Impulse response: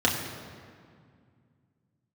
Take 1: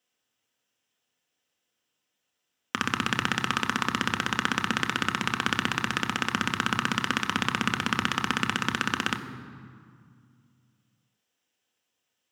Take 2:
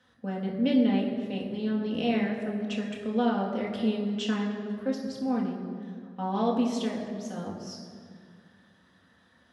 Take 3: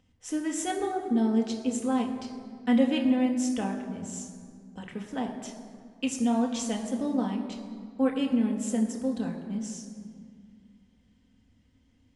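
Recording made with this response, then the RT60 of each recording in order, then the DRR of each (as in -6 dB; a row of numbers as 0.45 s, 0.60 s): 2; 2.1 s, 2.1 s, 2.1 s; 7.0 dB, -3.0 dB, 1.0 dB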